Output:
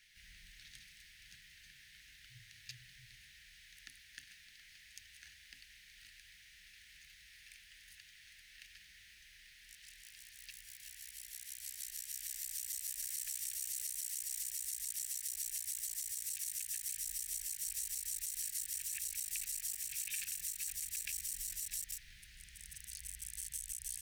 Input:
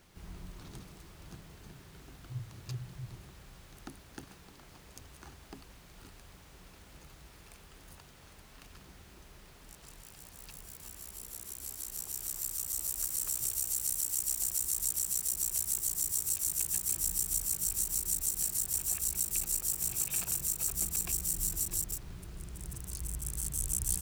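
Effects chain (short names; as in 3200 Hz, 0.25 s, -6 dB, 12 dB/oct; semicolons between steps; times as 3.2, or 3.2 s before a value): limiter -24 dBFS, peak gain reduction 10.5 dB; elliptic high-pass 1800 Hz, stop band 40 dB; tilt -3.5 dB/oct; notch 7400 Hz, Q 15; gain +8.5 dB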